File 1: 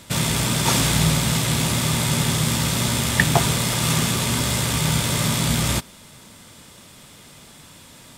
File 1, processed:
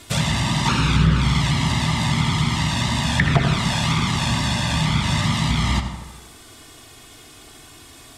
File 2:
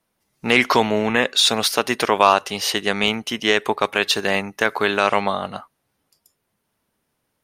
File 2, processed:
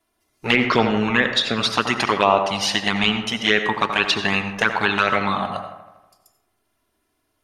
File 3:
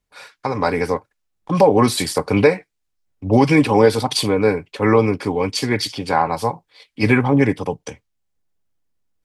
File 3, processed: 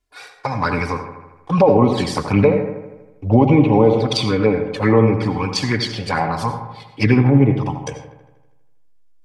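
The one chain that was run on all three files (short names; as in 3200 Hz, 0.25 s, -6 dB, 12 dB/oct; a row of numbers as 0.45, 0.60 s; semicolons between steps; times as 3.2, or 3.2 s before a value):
envelope flanger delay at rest 2.9 ms, full sweep at -10.5 dBFS; dynamic EQ 420 Hz, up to -4 dB, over -29 dBFS, Q 0.7; treble ducked by the level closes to 1700 Hz, closed at -14.5 dBFS; on a send: dark delay 80 ms, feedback 61%, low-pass 1600 Hz, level -8.5 dB; on the sum: digital reverb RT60 0.58 s, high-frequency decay 0.55×, pre-delay 50 ms, DRR 10.5 dB; maximiser +6 dB; gain -1.5 dB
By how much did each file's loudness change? 0.0, -0.5, +1.0 LU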